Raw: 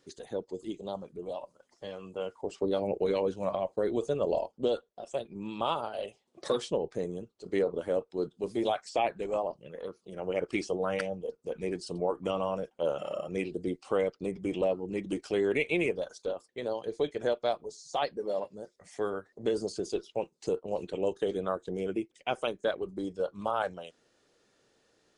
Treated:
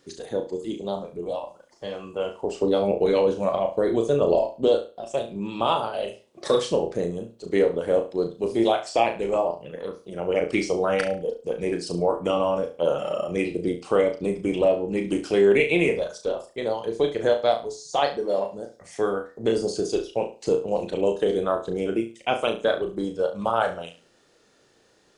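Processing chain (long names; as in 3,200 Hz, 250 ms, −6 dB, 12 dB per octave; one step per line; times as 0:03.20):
flutter between parallel walls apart 6 metres, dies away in 0.33 s
level +7 dB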